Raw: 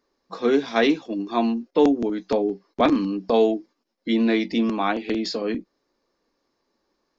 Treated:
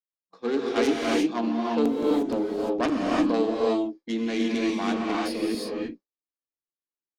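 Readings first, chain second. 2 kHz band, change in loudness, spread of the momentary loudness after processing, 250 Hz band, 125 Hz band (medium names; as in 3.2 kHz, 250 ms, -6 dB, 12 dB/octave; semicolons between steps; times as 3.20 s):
-3.0 dB, -3.0 dB, 7 LU, -2.5 dB, -4.0 dB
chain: self-modulated delay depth 0.2 ms; gated-style reverb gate 380 ms rising, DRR -3 dB; expander -26 dBFS; trim -7.5 dB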